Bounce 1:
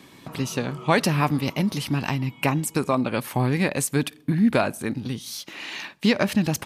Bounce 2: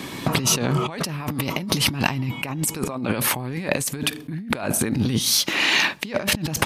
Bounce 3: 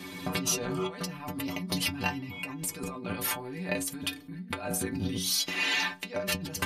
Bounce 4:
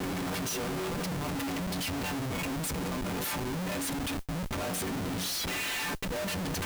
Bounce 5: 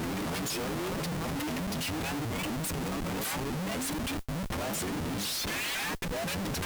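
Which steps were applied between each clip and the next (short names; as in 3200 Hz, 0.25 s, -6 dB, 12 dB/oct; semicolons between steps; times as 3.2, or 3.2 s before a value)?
negative-ratio compressor -33 dBFS, ratio -1; gain +8 dB
metallic resonator 89 Hz, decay 0.3 s, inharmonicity 0.008
Schmitt trigger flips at -40.5 dBFS; modulation noise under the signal 21 dB
shaped vibrato saw up 4 Hz, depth 250 cents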